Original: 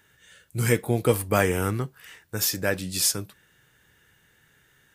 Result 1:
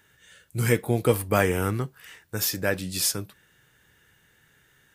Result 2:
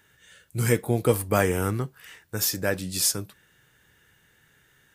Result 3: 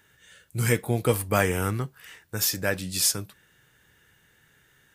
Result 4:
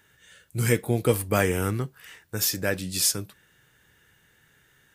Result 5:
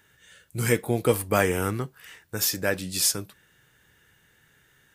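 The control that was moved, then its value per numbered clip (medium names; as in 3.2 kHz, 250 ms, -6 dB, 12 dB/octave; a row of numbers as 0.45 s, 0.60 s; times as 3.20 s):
dynamic bell, frequency: 7.3 kHz, 2.6 kHz, 360 Hz, 930 Hz, 110 Hz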